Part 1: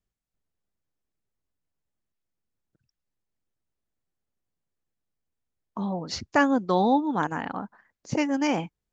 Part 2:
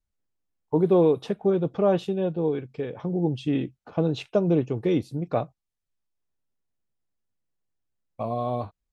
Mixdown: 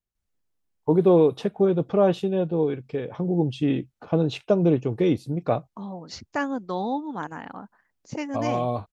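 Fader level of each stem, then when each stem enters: -6.0 dB, +2.0 dB; 0.00 s, 0.15 s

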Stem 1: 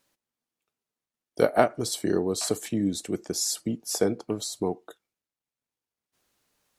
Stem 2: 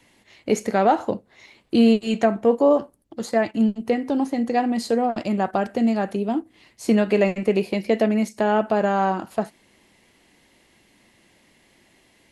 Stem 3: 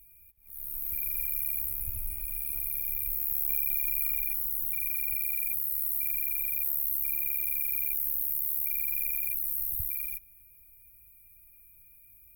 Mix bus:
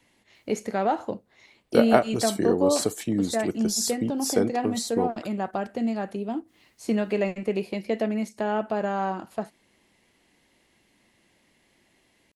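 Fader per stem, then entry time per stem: +1.0 dB, -6.5 dB, mute; 0.35 s, 0.00 s, mute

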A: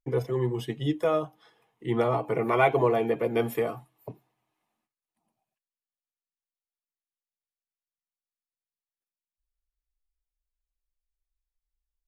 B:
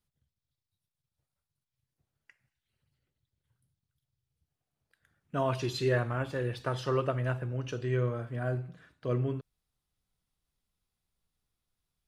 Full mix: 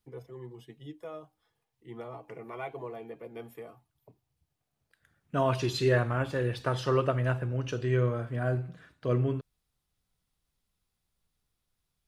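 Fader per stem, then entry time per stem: -17.0 dB, +3.0 dB; 0.00 s, 0.00 s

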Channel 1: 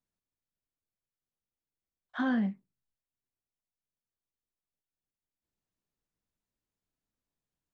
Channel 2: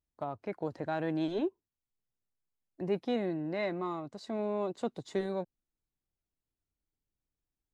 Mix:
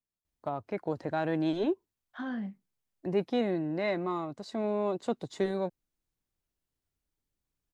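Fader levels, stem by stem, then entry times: -7.0 dB, +3.0 dB; 0.00 s, 0.25 s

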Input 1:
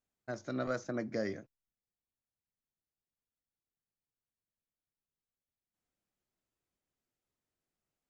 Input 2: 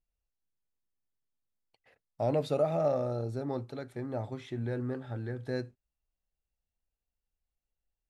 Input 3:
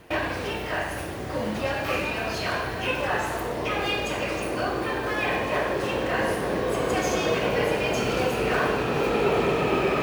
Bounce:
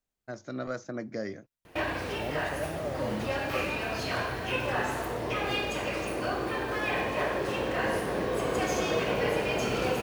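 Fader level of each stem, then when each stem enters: +0.5 dB, -7.5 dB, -4.0 dB; 0.00 s, 0.00 s, 1.65 s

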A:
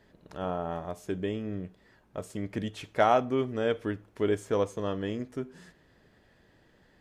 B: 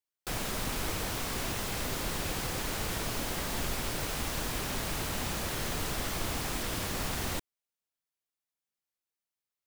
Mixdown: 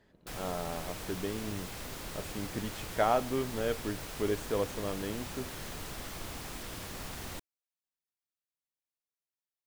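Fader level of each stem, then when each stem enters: -4.5 dB, -8.0 dB; 0.00 s, 0.00 s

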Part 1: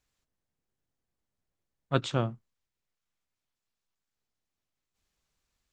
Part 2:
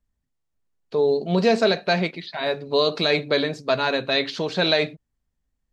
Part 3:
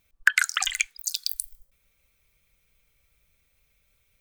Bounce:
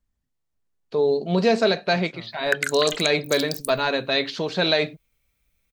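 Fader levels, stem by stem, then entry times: -16.0 dB, -0.5 dB, -4.0 dB; 0.00 s, 0.00 s, 2.25 s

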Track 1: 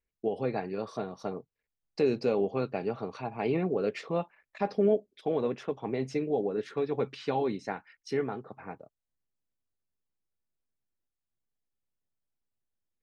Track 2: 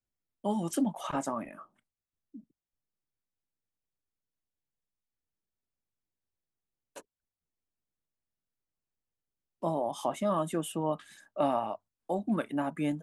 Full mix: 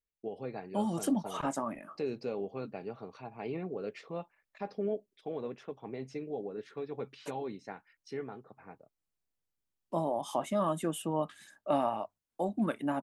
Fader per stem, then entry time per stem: -9.0 dB, -1.0 dB; 0.00 s, 0.30 s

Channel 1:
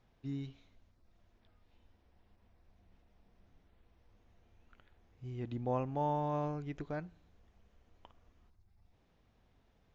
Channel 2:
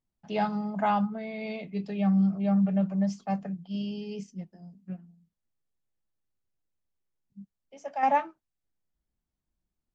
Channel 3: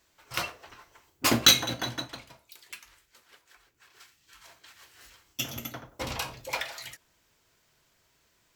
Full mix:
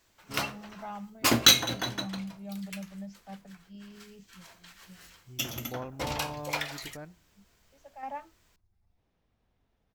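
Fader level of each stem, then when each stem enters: -4.5 dB, -15.0 dB, 0.0 dB; 0.05 s, 0.00 s, 0.00 s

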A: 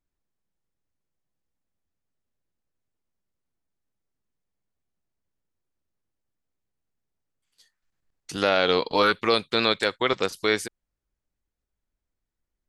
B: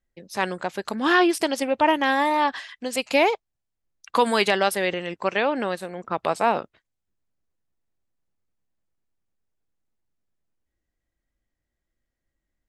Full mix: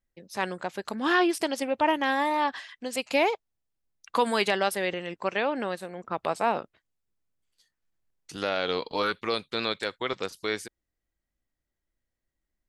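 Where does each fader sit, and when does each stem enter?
-7.0 dB, -4.5 dB; 0.00 s, 0.00 s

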